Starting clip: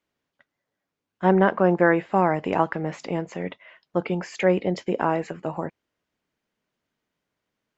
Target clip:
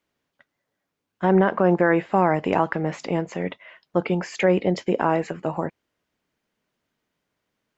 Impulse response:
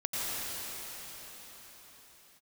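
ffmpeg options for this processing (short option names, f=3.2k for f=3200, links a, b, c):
-af "alimiter=limit=-10.5dB:level=0:latency=1:release=53,volume=3dB"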